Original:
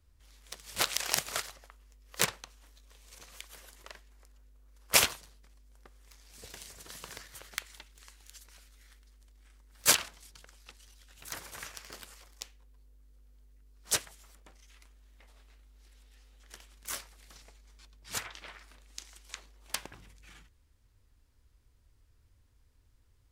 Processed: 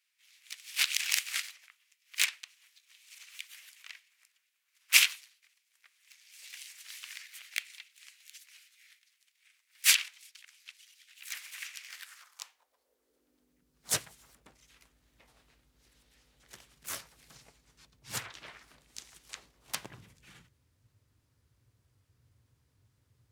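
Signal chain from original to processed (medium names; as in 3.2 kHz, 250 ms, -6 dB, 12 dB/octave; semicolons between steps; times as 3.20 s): harmony voices +3 st -5 dB; high-pass sweep 2.3 kHz -> 120 Hz, 11.85–13.95 s; trim -2 dB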